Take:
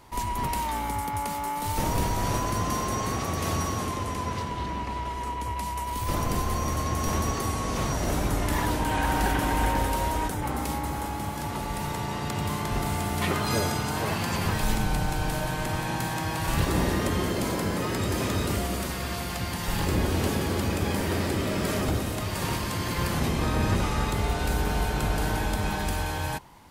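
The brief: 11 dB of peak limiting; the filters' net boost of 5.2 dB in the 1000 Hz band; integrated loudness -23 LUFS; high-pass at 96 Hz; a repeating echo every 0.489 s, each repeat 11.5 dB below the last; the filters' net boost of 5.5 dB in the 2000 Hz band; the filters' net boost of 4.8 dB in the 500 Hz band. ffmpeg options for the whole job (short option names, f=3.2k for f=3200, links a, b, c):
-af "highpass=96,equalizer=f=500:t=o:g=5,equalizer=f=1k:t=o:g=3.5,equalizer=f=2k:t=o:g=5.5,alimiter=limit=-19.5dB:level=0:latency=1,aecho=1:1:489|978|1467:0.266|0.0718|0.0194,volume=5dB"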